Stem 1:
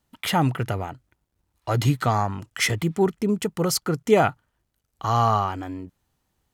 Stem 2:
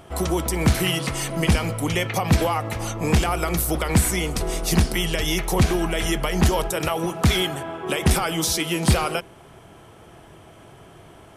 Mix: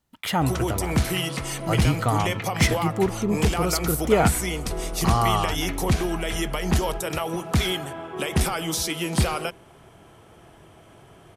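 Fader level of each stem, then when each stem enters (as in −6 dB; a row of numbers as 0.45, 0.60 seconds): −2.0, −3.5 decibels; 0.00, 0.30 seconds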